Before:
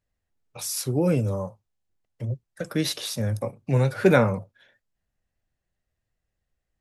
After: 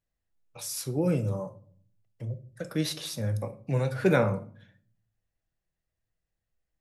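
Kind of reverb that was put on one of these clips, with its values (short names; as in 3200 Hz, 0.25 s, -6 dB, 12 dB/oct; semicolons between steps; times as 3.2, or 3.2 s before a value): shoebox room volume 600 m³, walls furnished, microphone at 0.69 m; gain -5.5 dB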